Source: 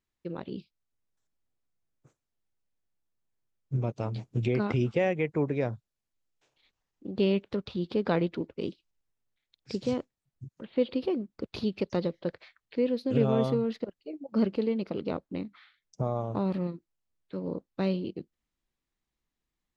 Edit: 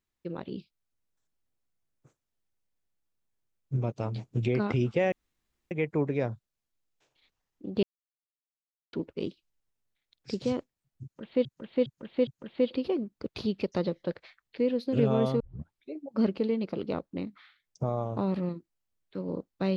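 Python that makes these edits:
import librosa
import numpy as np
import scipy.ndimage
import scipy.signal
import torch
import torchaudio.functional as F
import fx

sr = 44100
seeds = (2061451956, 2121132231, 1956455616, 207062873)

y = fx.edit(x, sr, fx.insert_room_tone(at_s=5.12, length_s=0.59),
    fx.silence(start_s=7.24, length_s=1.1),
    fx.repeat(start_s=10.45, length_s=0.41, count=4),
    fx.tape_start(start_s=13.58, length_s=0.54), tone=tone)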